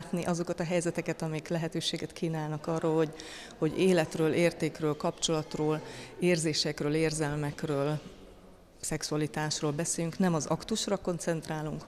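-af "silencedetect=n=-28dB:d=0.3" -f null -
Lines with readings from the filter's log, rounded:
silence_start: 3.20
silence_end: 3.62 | silence_duration: 0.42
silence_start: 5.77
silence_end: 6.22 | silence_duration: 0.46
silence_start: 7.96
silence_end: 8.84 | silence_duration: 0.88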